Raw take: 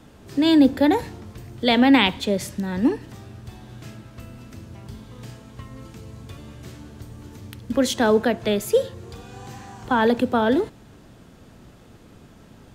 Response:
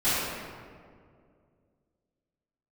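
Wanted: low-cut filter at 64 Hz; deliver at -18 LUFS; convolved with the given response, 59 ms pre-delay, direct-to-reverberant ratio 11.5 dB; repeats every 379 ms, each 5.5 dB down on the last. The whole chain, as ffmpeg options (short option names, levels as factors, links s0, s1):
-filter_complex "[0:a]highpass=64,aecho=1:1:379|758|1137|1516|1895|2274|2653:0.531|0.281|0.149|0.079|0.0419|0.0222|0.0118,asplit=2[s0][s1];[1:a]atrim=start_sample=2205,adelay=59[s2];[s1][s2]afir=irnorm=-1:irlink=0,volume=0.0473[s3];[s0][s3]amix=inputs=2:normalize=0,volume=1.26"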